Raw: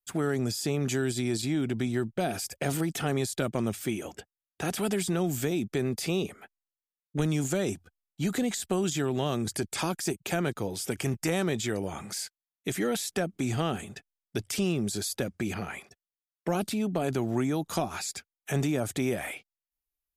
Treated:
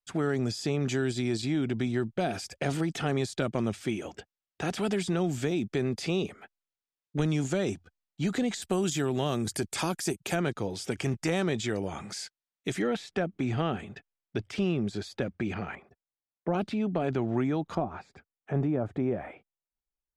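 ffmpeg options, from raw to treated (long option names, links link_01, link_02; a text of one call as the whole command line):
ffmpeg -i in.wav -af "asetnsamples=nb_out_samples=441:pad=0,asendcmd='8.62 lowpass f 12000;10.35 lowpass f 6300;12.82 lowpass f 3000;15.75 lowpass f 1200;16.54 lowpass f 2900;17.75 lowpass f 1100',lowpass=5700" out.wav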